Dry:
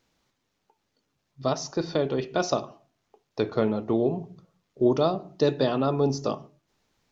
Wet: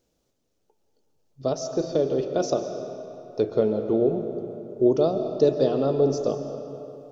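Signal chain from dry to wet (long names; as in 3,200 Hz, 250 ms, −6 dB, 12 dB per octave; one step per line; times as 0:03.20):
octave-band graphic EQ 125/250/500/1,000/2,000/4,000 Hz −4/−3/+5/−10/−11/−6 dB
on a send: convolution reverb RT60 3.1 s, pre-delay 95 ms, DRR 7.5 dB
on the sum: level +2.5 dB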